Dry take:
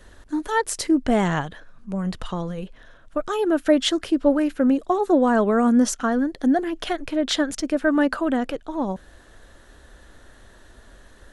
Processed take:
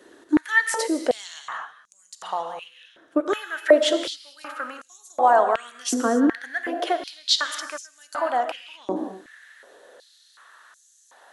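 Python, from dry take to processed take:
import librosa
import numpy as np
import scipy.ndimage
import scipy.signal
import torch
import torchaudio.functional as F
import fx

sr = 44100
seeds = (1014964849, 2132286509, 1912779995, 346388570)

y = fx.rev_gated(x, sr, seeds[0], gate_ms=280, shape='flat', drr_db=6.5)
y = fx.filter_held_highpass(y, sr, hz=2.7, low_hz=330.0, high_hz=6600.0)
y = F.gain(torch.from_numpy(y), -2.0).numpy()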